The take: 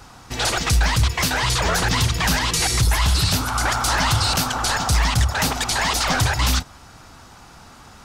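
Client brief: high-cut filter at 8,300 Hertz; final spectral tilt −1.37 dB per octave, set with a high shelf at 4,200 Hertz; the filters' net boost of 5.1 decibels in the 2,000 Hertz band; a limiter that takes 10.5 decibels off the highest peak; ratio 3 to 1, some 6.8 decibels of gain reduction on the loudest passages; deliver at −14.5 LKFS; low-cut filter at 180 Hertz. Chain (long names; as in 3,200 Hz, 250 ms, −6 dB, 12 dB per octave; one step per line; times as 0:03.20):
high-pass filter 180 Hz
low-pass filter 8,300 Hz
parametric band 2,000 Hz +5.5 dB
high-shelf EQ 4,200 Hz +4.5 dB
downward compressor 3 to 1, threshold −24 dBFS
level +14 dB
brickwall limiter −7 dBFS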